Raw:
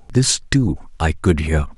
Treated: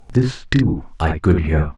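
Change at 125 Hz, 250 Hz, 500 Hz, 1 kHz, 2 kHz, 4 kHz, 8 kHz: +1.0 dB, +1.0 dB, +1.0 dB, +1.0 dB, −0.5 dB, −8.5 dB, below −20 dB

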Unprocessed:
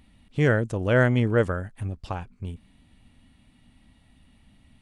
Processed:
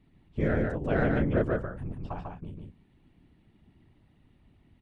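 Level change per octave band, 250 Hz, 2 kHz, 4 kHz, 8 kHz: −3.0 dB, −8.0 dB, below −10 dB, can't be measured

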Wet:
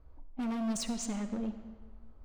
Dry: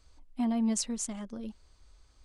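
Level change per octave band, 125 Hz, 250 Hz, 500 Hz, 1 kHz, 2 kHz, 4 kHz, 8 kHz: can't be measured, −3.0 dB, −0.5 dB, −0.5 dB, +2.0 dB, −1.5 dB, −5.5 dB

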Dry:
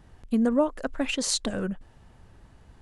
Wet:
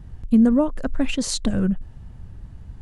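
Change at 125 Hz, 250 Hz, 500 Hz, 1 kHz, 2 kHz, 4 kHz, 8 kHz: +11.0, +8.0, +1.0, 0.0, 0.0, 0.0, 0.0 decibels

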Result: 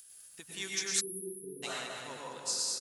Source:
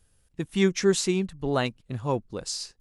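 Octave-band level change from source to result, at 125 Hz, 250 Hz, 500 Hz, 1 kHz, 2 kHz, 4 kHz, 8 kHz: −24.5, −22.0, −17.5, −11.0, −6.5, −3.0, +0.5 decibels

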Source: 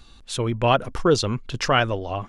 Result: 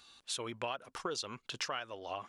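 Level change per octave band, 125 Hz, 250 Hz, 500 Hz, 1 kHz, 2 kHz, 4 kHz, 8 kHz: −28.0, −21.5, −19.5, −17.0, −16.0, −12.0, −9.0 decibels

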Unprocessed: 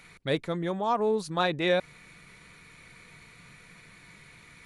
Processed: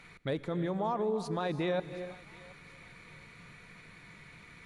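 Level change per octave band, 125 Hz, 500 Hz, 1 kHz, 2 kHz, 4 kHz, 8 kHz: −1.5, −5.5, −6.5, −9.0, −11.0, −7.5 decibels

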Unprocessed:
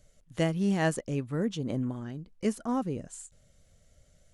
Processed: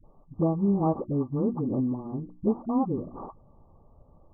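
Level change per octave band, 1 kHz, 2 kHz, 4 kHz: +3.5 dB, below −30 dB, below −40 dB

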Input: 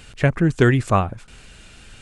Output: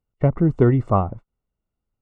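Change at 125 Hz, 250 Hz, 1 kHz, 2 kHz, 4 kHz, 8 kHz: 0.0 dB, 0.0 dB, −2.0 dB, −15.0 dB, below −20 dB, below −25 dB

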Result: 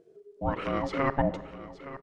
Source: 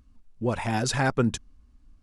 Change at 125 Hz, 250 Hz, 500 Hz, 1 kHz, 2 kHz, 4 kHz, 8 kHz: −7.0 dB, −4.0 dB, −0.5 dB, −0.5 dB, −5.5 dB, −11.5 dB, below −20 dB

